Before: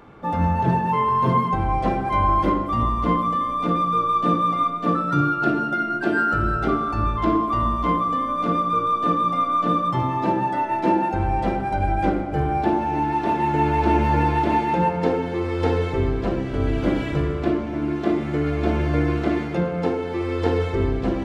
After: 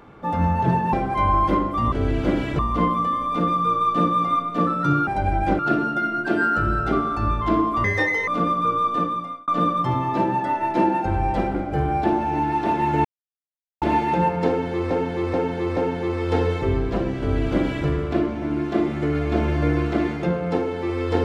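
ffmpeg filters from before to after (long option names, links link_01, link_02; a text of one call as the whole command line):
ffmpeg -i in.wav -filter_complex "[0:a]asplit=15[link_01][link_02][link_03][link_04][link_05][link_06][link_07][link_08][link_09][link_10][link_11][link_12][link_13][link_14][link_15];[link_01]atrim=end=0.932[link_16];[link_02]atrim=start=1.878:end=2.872[link_17];[link_03]atrim=start=16.508:end=17.182[link_18];[link_04]atrim=start=2.868:end=5.352[link_19];[link_05]atrim=start=11.628:end=12.152[link_20];[link_06]atrim=start=5.348:end=7.604[link_21];[link_07]atrim=start=7.6:end=8.36,asetpts=PTS-STARTPTS,asetrate=76734,aresample=44100,atrim=end_sample=19262,asetpts=PTS-STARTPTS[link_22];[link_08]atrim=start=8.356:end=9.56,asetpts=PTS-STARTPTS,afade=type=out:start_time=0.604:duration=0.6[link_23];[link_09]atrim=start=9.56:end=11.632,asetpts=PTS-STARTPTS,afade=type=in:duration=0.004:curve=hsin[link_24];[link_10]atrim=start=12.148:end=13.65,asetpts=PTS-STARTPTS,afade=type=out:start_time=1.498:duration=0.004:curve=hsin[link_25];[link_11]atrim=start=13.65:end=14.42,asetpts=PTS-STARTPTS,volume=0[link_26];[link_12]atrim=start=14.42:end=15.512,asetpts=PTS-STARTPTS,afade=type=in:duration=0.004:curve=hsin[link_27];[link_13]atrim=start=15.078:end=15.512[link_28];[link_14]atrim=start=15.078:end=15.512[link_29];[link_15]atrim=start=15.078[link_30];[link_16][link_17]acrossfade=duration=0.004:curve1=hsin:curve2=hsin[link_31];[link_31][link_18]acrossfade=duration=0.004:curve1=hsin:curve2=hsin[link_32];[link_32][link_19]acrossfade=duration=0.004:curve1=hsin:curve2=hsin[link_33];[link_33][link_20]acrossfade=duration=0.004:curve1=hsin:curve2=hsin[link_34];[link_34][link_21]acrossfade=duration=0.004:curve1=hsin:curve2=hsin[link_35];[link_35][link_22]acrossfade=duration=0.004:curve1=hsin:curve2=hsin[link_36];[link_23][link_24]concat=n=2:v=0:a=1[link_37];[link_36][link_37]acrossfade=duration=0.004:curve1=hsin:curve2=hsin[link_38];[link_25][link_26][link_27]concat=n=3:v=0:a=1[link_39];[link_38][link_39]acrossfade=duration=0.004:curve1=hsin:curve2=hsin[link_40];[link_40][link_28]acrossfade=duration=0.004:curve1=hsin:curve2=hsin[link_41];[link_41][link_29]acrossfade=duration=0.004:curve1=hsin:curve2=hsin[link_42];[link_42][link_30]acrossfade=duration=0.004:curve1=hsin:curve2=hsin" out.wav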